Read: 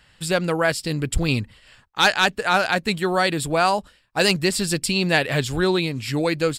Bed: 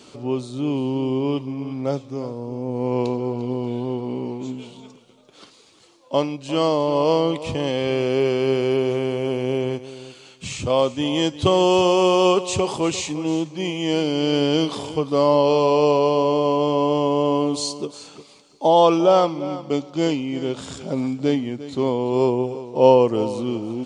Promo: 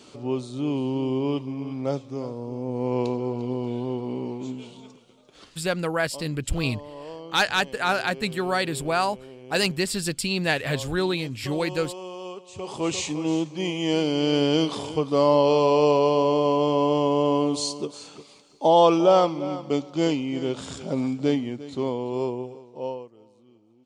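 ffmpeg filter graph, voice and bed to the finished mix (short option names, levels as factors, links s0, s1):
-filter_complex "[0:a]adelay=5350,volume=0.596[s0];[1:a]volume=5.96,afade=t=out:st=5.36:d=0.6:silence=0.133352,afade=t=in:st=12.54:d=0.44:silence=0.11885,afade=t=out:st=21.19:d=1.92:silence=0.0334965[s1];[s0][s1]amix=inputs=2:normalize=0"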